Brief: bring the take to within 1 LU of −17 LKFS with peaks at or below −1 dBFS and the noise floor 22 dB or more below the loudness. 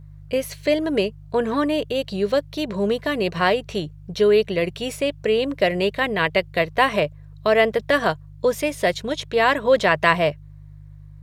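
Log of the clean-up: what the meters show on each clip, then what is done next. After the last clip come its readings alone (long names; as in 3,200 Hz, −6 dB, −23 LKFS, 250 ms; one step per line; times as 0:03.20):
mains hum 50 Hz; hum harmonics up to 150 Hz; level of the hum −40 dBFS; integrated loudness −21.5 LKFS; sample peak −1.5 dBFS; target loudness −17.0 LKFS
→ hum removal 50 Hz, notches 3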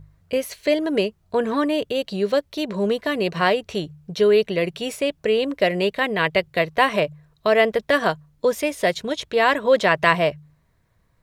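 mains hum none found; integrated loudness −21.5 LKFS; sample peak −1.5 dBFS; target loudness −17.0 LKFS
→ level +4.5 dB
brickwall limiter −1 dBFS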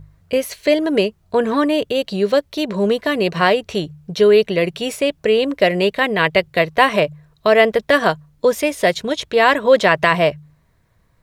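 integrated loudness −17.0 LKFS; sample peak −1.0 dBFS; background noise floor −59 dBFS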